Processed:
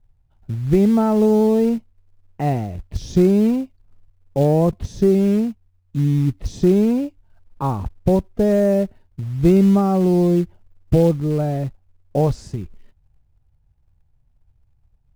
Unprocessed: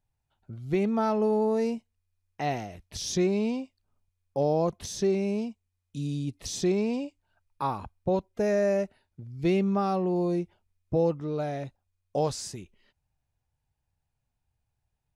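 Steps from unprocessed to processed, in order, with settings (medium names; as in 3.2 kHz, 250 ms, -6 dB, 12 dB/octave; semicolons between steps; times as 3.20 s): tilt EQ -4 dB/octave; in parallel at -5.5 dB: short-mantissa float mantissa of 2-bit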